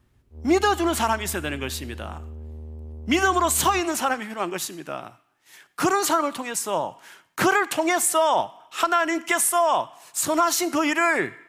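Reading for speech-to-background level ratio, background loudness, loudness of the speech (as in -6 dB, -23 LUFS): 17.0 dB, -39.5 LUFS, -22.5 LUFS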